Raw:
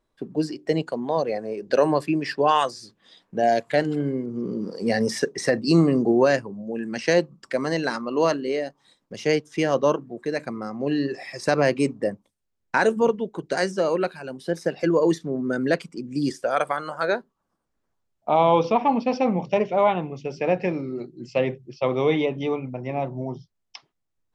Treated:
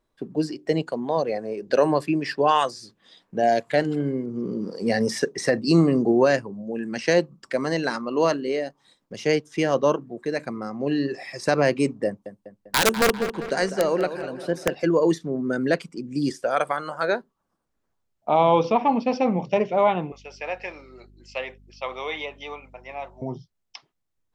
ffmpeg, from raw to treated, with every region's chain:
-filter_complex "[0:a]asettb=1/sr,asplit=3[a][b][c];[a]atrim=end=12.064[d];[b]atrim=start=12.06:end=14.75,asetpts=PTS-STARTPTS,afade=t=in:d=0.004:c=qsin,afade=t=out:st=2.686:d=0.004:c=qsin,aeval=exprs='(mod(3.55*val(0)+1,2)-1)/3.55':c=same,asplit=2[e][f];[f]adelay=198,lowpass=f=3.9k:p=1,volume=-10.5dB,asplit=2[g][h];[h]adelay=198,lowpass=f=3.9k:p=1,volume=0.54,asplit=2[i][j];[j]adelay=198,lowpass=f=3.9k:p=1,volume=0.54,asplit=2[k][l];[l]adelay=198,lowpass=f=3.9k:p=1,volume=0.54,asplit=2[m][n];[n]adelay=198,lowpass=f=3.9k:p=1,volume=0.54,asplit=2[o][p];[p]adelay=198,lowpass=f=3.9k:p=1,volume=0.54[q];[e][g][i][k][m][o][q]amix=inputs=7:normalize=0,atrim=end_sample=118629[r];[c]atrim=start=14.746[s];[d][r]acrossfade=d=0.004:c1=hsin:c2=qsin[t];[t][s]acrossfade=d=0.004:c1=qsin:c2=hsin,asettb=1/sr,asplit=3[u][v][w];[u]atrim=end=20.124[x];[v]atrim=start=20.12:end=23.22,asetpts=PTS-STARTPTS,afade=t=in:d=0.004:c=qsin,afade=t=out:st=3.096:d=0.004:c=qsin,highpass=920,aeval=exprs='val(0)+0.00282*(sin(2*PI*50*n/s)+sin(2*PI*2*50*n/s)/2+sin(2*PI*3*50*n/s)/3+sin(2*PI*4*50*n/s)/4+sin(2*PI*5*50*n/s)/5)':c=same[y];[w]atrim=start=23.216[z];[x][y]acrossfade=d=0.004:c1=hsin:c2=qsin[aa];[aa][z]acrossfade=d=0.004:c1=qsin:c2=hsin"

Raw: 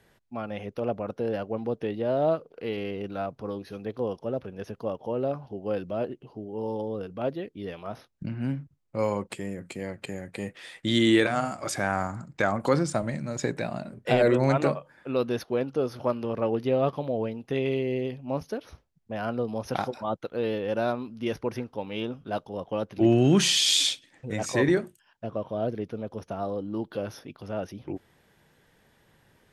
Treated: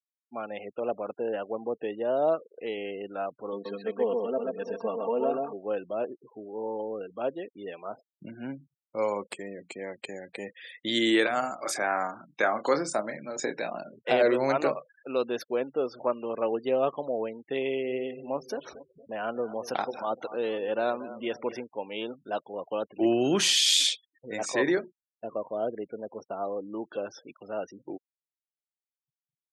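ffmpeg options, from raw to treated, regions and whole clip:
-filter_complex "[0:a]asettb=1/sr,asplit=3[a][b][c];[a]atrim=end=3.524[d];[b]atrim=start=3.52:end=5.53,asetpts=PTS-STARTPTS,afade=t=in:d=0.004:c=qsin,afade=t=out:st=2.006:d=0.004:c=qsin,aecho=1:1:4.4:0.9,atrim=end_sample=88641,aecho=1:1:131|383|664:0.708|0.178|0.188,atrim=end_sample=88641[e];[c]atrim=start=5.526[f];[d][e]acrossfade=d=0.004:c1=hsin:c2=qsin[g];[g][f]acrossfade=d=0.004:c1=qsin:c2=hsin,asettb=1/sr,asplit=3[h][i][j];[h]atrim=end=11.634[k];[i]atrim=start=11.63:end=13.86,asetpts=PTS-STARTPTS,afade=t=in:d=0.004:c=qsin,afade=t=out:st=2.226:d=0.004:c=qsin,highpass=170,asplit=2[l][m];[m]adelay=28,volume=-8dB[n];[l][n]amix=inputs=2:normalize=0,atrim=end_sample=98343[o];[j]atrim=start=13.856[p];[k][o]acrossfade=d=0.004:c1=hsin:c2=qsin[q];[q][p]acrossfade=d=0.004:c1=qsin:c2=hsin,asettb=1/sr,asplit=3[r][s][t];[r]atrim=end=17.624[u];[s]atrim=start=17.62:end=21.64,asetpts=PTS-STARTPTS,afade=t=in:d=0.004:c=qsin,afade=t=out:st=4.016:d=0.004:c=qsin,acompressor=mode=upward:threshold=-30dB:ratio=2.5:attack=3.2:release=140:knee=2.83:detection=peak,aecho=1:1:230|460|690|920:0.178|0.0818|0.0376|0.0173,atrim=end_sample=177282[v];[t]atrim=start=21.636[w];[u][v]acrossfade=d=0.004:c1=hsin:c2=qsin[x];[x][w]acrossfade=d=0.004:c1=qsin:c2=hsin,afftfilt=real='re*gte(hypot(re,im),0.00794)':imag='im*gte(hypot(re,im),0.00794)':win_size=1024:overlap=0.75,highpass=340"

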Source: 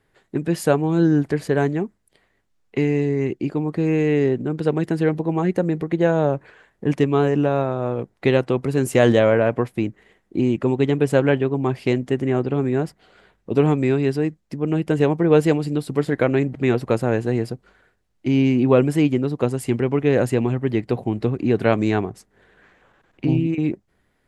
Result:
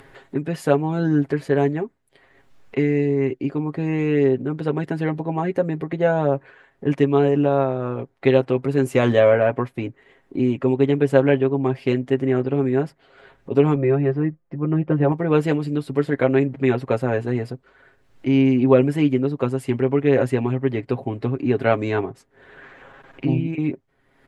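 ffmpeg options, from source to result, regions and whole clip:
-filter_complex "[0:a]asettb=1/sr,asplit=3[a][b][c];[a]atrim=end=13.754[d];[b]atrim=start=13.75:end=15.12,asetpts=PTS-STARTPTS,afade=t=in:d=0.004:c=qsin,afade=t=out:st=1.366:d=0.004:c=qsin,lowpass=1.5k,aecho=1:1:5.8:0.68,atrim=end_sample=60417[e];[c]atrim=start=15.116[f];[d][e]acrossfade=d=0.004:c1=hsin:c2=qsin[g];[g][f]acrossfade=d=0.004:c1=qsin:c2=hsin,bass=f=250:g=-4,treble=f=4k:g=-9,aecho=1:1:7.4:0.6,acompressor=mode=upward:threshold=-32dB:ratio=2.5,volume=-1dB"

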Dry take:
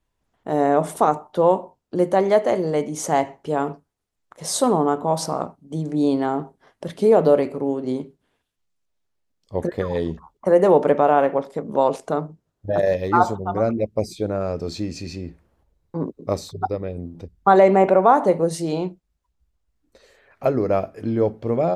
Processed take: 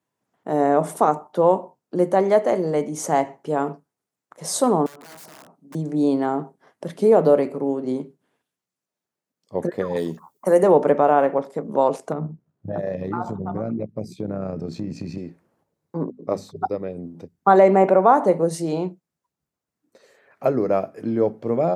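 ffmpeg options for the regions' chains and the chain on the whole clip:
-filter_complex "[0:a]asettb=1/sr,asplit=3[a][b][c];[a]atrim=end=4.864[d];[b]atrim=start=4.86:end=5.75,asetpts=PTS-STARTPTS,afade=t=in:d=0.004:c=qsin,afade=t=out:st=0.886:d=0.004:c=qsin,highpass=190,acompressor=threshold=-42dB:ratio=2.5:attack=3.2:release=140:knee=1:detection=peak,aeval=exprs='(mod(66.8*val(0)+1,2)-1)/66.8':c=same[e];[c]atrim=start=5.746[f];[d][e]acrossfade=d=0.004:c1=hsin:c2=qsin[g];[g][f]acrossfade=d=0.004:c1=qsin:c2=hsin,asettb=1/sr,asplit=3[h][i][j];[h]atrim=end=9.964[k];[i]atrim=start=9.96:end=10.63,asetpts=PTS-STARTPTS,afade=t=in:d=0.004:c=qsin,afade=t=out:st=0.666:d=0.004:c=qsin,highpass=99,aemphasis=mode=production:type=75fm[l];[j]atrim=start=10.626[m];[k][l]acrossfade=d=0.004:c1=hsin:c2=qsin[n];[n][m]acrossfade=d=0.004:c1=qsin:c2=hsin,asettb=1/sr,asplit=3[o][p][q];[o]atrim=end=12.124[r];[p]atrim=start=12.12:end=15.18,asetpts=PTS-STARTPTS,afade=t=in:d=0.004:c=qsin,afade=t=out:st=3.056:d=0.004:c=qsin,bass=f=250:g=12,treble=f=4k:g=-7,acompressor=threshold=-19dB:ratio=6:attack=3.2:release=140:knee=1:detection=peak,tremolo=f=64:d=0.519[s];[q]atrim=start=15.176[t];[r][s]acrossfade=d=0.004:c1=hsin:c2=qsin[u];[u][t]acrossfade=d=0.004:c1=qsin:c2=hsin,asettb=1/sr,asplit=3[v][w][x];[v]atrim=end=16.044[y];[w]atrim=start=16.04:end=16.56,asetpts=PTS-STARTPTS,afade=t=in:d=0.004:c=qsin,afade=t=out:st=0.516:d=0.004:c=qsin,highshelf=f=4.1k:g=-9.5,bandreject=f=50:t=h:w=6,bandreject=f=100:t=h:w=6,bandreject=f=150:t=h:w=6,bandreject=f=200:t=h:w=6,bandreject=f=250:t=h:w=6[z];[x]atrim=start=16.556[aa];[y][z]acrossfade=d=0.004:c1=hsin:c2=qsin[ab];[ab][aa]acrossfade=d=0.004:c1=qsin:c2=hsin,highpass=f=130:w=0.5412,highpass=f=130:w=1.3066,equalizer=f=3.4k:w=1.2:g=-5"

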